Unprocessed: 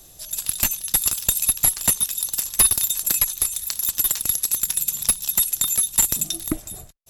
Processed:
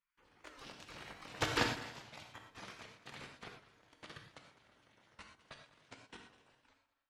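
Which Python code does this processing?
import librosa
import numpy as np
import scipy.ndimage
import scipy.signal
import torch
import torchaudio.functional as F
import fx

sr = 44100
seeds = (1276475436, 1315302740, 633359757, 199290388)

y = fx.pitch_glide(x, sr, semitones=-9.0, runs='starting unshifted')
y = fx.doppler_pass(y, sr, speed_mps=18, closest_m=6.1, pass_at_s=1.47)
y = scipy.signal.sosfilt(scipy.signal.butter(2, 160.0, 'highpass', fs=sr, output='sos'), y)
y = fx.peak_eq(y, sr, hz=580.0, db=5.5, octaves=0.41)
y = fx.spec_gate(y, sr, threshold_db=-30, keep='weak')
y = fx.level_steps(y, sr, step_db=20)
y = fx.spacing_loss(y, sr, db_at_10k=26)
y = fx.echo_heads(y, sr, ms=67, heads='first and third', feedback_pct=40, wet_db=-18)
y = fx.rev_gated(y, sr, seeds[0], gate_ms=140, shape='flat', drr_db=2.5)
y = fx.record_warp(y, sr, rpm=78.0, depth_cents=100.0)
y = y * 10.0 ** (16.5 / 20.0)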